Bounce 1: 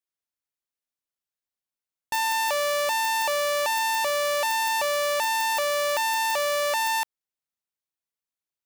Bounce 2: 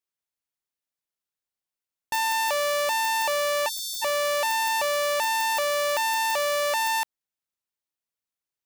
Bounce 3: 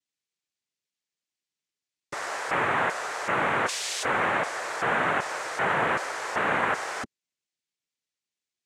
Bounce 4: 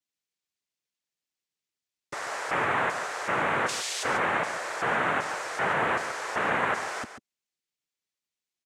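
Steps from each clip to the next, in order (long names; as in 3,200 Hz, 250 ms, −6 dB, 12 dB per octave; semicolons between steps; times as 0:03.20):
time-frequency box erased 0:03.69–0:04.02, 230–3,100 Hz
full-wave rectification; flat-topped bell 1,300 Hz −9 dB; cochlear-implant simulation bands 3; level +6.5 dB
single-tap delay 140 ms −10.5 dB; level −1.5 dB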